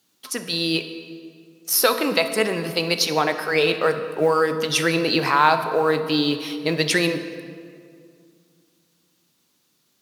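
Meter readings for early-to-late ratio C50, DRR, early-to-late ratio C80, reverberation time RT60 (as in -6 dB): 9.5 dB, 8.0 dB, 10.5 dB, 2.3 s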